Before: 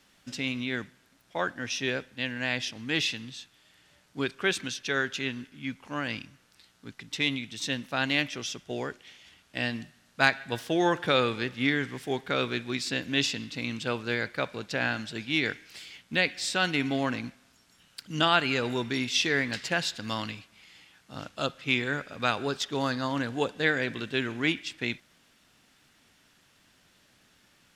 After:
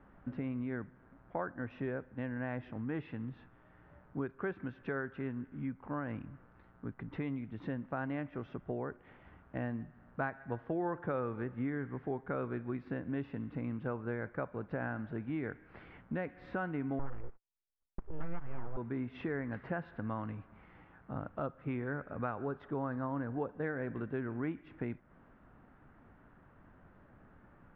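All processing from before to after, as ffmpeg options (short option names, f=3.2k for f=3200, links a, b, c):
-filter_complex "[0:a]asettb=1/sr,asplit=3[a][b][c];[a]atrim=end=16.994[d];[b]atrim=start=16.99:end=18.77,asetpts=PTS-STARTPTS,afade=t=in:d=0.004:c=qsin,afade=t=out:st=1.776:d=0.004:c=qsin,agate=range=-44dB:threshold=-56dB:ratio=16:release=100:detection=peak,aeval=exprs='abs(val(0))':c=same[e];[c]atrim=start=18.766[f];[d][e]acrossfade=d=0.004:c1=hsin:c2=qsin[g];[g][f]acrossfade=d=0.004:c1=qsin:c2=hsin,lowpass=f=1.4k:w=0.5412,lowpass=f=1.4k:w=1.3066,lowshelf=f=77:g=11,acompressor=threshold=-44dB:ratio=3,volume=5.5dB"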